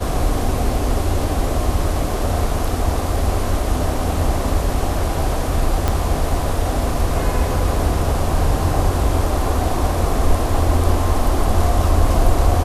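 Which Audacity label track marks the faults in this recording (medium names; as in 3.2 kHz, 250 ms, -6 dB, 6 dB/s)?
5.880000	5.880000	pop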